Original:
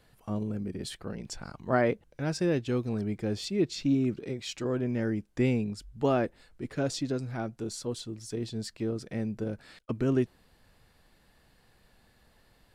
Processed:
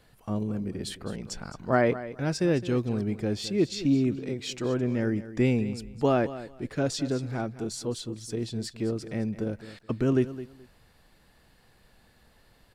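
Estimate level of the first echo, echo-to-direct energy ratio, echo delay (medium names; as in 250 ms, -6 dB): -14.5 dB, -14.5 dB, 213 ms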